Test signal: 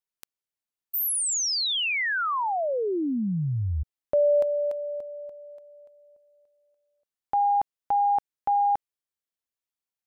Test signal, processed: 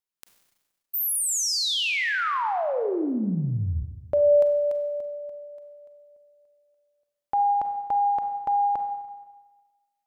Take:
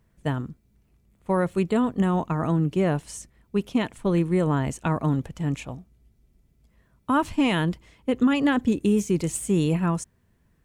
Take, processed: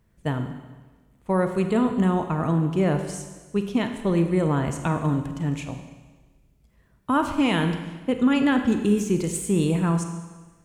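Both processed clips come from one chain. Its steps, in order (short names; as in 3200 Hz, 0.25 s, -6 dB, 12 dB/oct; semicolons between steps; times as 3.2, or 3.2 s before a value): Schroeder reverb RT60 1.3 s, combs from 32 ms, DRR 6.5 dB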